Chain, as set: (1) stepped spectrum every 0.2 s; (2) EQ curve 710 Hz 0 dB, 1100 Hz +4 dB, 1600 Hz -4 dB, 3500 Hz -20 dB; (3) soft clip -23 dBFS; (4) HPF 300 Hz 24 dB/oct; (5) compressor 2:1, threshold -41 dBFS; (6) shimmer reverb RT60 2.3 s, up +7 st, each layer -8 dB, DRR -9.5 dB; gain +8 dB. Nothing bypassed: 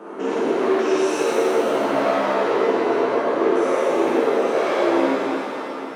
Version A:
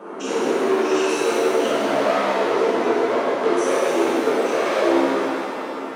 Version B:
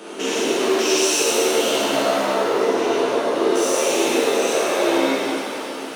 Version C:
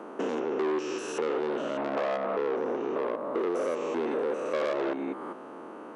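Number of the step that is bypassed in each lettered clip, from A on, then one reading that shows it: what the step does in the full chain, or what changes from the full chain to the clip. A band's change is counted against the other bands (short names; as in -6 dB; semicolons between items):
1, 8 kHz band +4.5 dB; 2, 8 kHz band +16.0 dB; 6, 125 Hz band +3.5 dB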